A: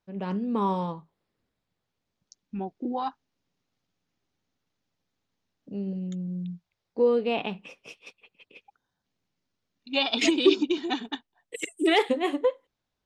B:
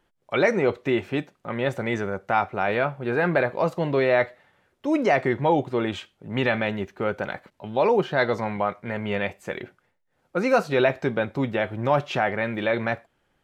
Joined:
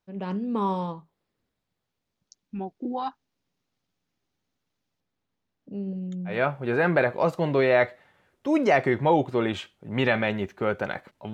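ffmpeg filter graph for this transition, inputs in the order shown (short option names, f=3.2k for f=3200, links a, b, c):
-filter_complex "[0:a]asettb=1/sr,asplit=3[a][b][c];[a]atrim=end=5.004[d];[b]atrim=start=5:end=6.43,asetpts=PTS-STARTPTS,afade=t=in:d=0.004:c=qsin,afade=t=out:st=1.426:d=0.004:c=qsin,highshelf=f=4k:g=-9.5[e];[c]atrim=start=6.426[f];[d][e]acrossfade=d=0.004:c1=hsin:c2=qsin[g];[g][f]acrossfade=d=0.004:c1=qsin:c2=hsin,apad=whole_dur=11.33,atrim=end=11.33,atrim=end=6.43,asetpts=PTS-STARTPTS[h];[1:a]atrim=start=2.64:end=7.72,asetpts=PTS-STARTPTS[i];[h][i]acrossfade=d=0.18:c1=tri:c2=tri"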